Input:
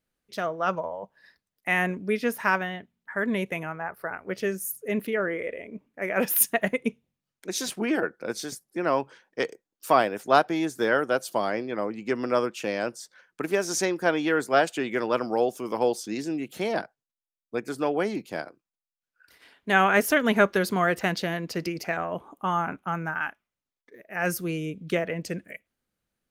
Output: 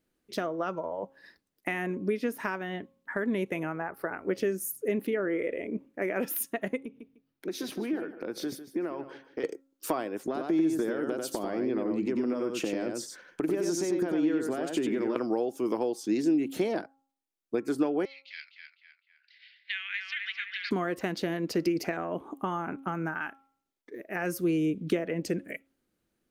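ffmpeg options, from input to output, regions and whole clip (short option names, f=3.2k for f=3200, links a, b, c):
-filter_complex "[0:a]asettb=1/sr,asplit=3[a][b][c];[a]atrim=end=6.854[d];[b]atrim=start=6.85:end=9.44,asetpts=PTS-STARTPTS,afade=t=in:d=0.004:c=qsin,afade=t=out:st=2.586:d=0.004:c=qsin,equalizer=f=7.4k:w=1.5:g=-13.5,acompressor=threshold=-37dB:ratio=8:attack=3.2:release=140:knee=1:detection=peak,aecho=1:1:151|302:0.237|0.0474,atrim=end_sample=114219[e];[c]atrim=start=9.436[f];[d][e]acrossfade=d=0.004:c1=hsin:c2=qsin[g];[g][f]acrossfade=d=0.004:c1=qsin:c2=hsin,asettb=1/sr,asplit=3[h][i][j];[h]atrim=end=10.254[k];[i]atrim=start=10.25:end=15.16,asetpts=PTS-STARTPTS,afade=t=in:d=0.004:c=qsin,afade=t=out:st=4.906:d=0.004:c=qsin,lowshelf=f=450:g=6.5,acompressor=threshold=-31dB:ratio=12:attack=3.2:release=140:knee=1:detection=peak,aecho=1:1:93:0.596,atrim=end_sample=216531[l];[j]atrim=start=15.156[m];[k][l]acrossfade=d=0.004:c1=hsin:c2=qsin[n];[n][m]acrossfade=d=0.004:c1=qsin:c2=hsin,asettb=1/sr,asplit=3[o][p][q];[o]atrim=end=18.054[r];[p]atrim=start=18.05:end=20.71,asetpts=PTS-STARTPTS,afade=t=in:d=0.004:c=qsin,afade=t=out:st=2.656:d=0.004:c=qsin,asuperpass=centerf=3000:order=8:qfactor=1.1,asplit=2[s][t];[t]adelay=254,lowpass=f=2.6k:p=1,volume=-3.5dB,asplit=2[u][v];[v]adelay=254,lowpass=f=2.6k:p=1,volume=0.53,asplit=2[w][x];[x]adelay=254,lowpass=f=2.6k:p=1,volume=0.53,asplit=2[y][z];[z]adelay=254,lowpass=f=2.6k:p=1,volume=0.53,asplit=2[aa][ab];[ab]adelay=254,lowpass=f=2.6k:p=1,volume=0.53,asplit=2[ac][ad];[ad]adelay=254,lowpass=f=2.6k:p=1,volume=0.53,asplit=2[ae][af];[af]adelay=254,lowpass=f=2.6k:p=1,volume=0.53[ag];[s][u][w][y][aa][ac][ae][ag]amix=inputs=8:normalize=0,atrim=end_sample=117306[ah];[q]atrim=start=20.706[ai];[r][ah]acrossfade=d=0.004:c1=hsin:c2=qsin[aj];[aj][ai]acrossfade=d=0.004:c1=qsin:c2=hsin,acompressor=threshold=-33dB:ratio=5,equalizer=f=320:t=o:w=0.94:g=10.5,bandreject=f=271.3:t=h:w=4,bandreject=f=542.6:t=h:w=4,bandreject=f=813.9:t=h:w=4,bandreject=f=1.0852k:t=h:w=4,bandreject=f=1.3565k:t=h:w=4,volume=1.5dB"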